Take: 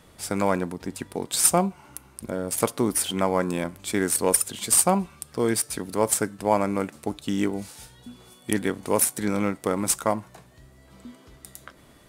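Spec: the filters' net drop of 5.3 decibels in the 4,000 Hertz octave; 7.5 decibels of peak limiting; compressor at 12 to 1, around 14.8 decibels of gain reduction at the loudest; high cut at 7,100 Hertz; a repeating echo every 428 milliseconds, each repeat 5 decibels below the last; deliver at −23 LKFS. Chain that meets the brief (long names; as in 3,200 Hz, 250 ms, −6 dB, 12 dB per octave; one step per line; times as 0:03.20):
low-pass filter 7,100 Hz
parametric band 4,000 Hz −6.5 dB
downward compressor 12 to 1, threshold −31 dBFS
brickwall limiter −25 dBFS
repeating echo 428 ms, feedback 56%, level −5 dB
level +14.5 dB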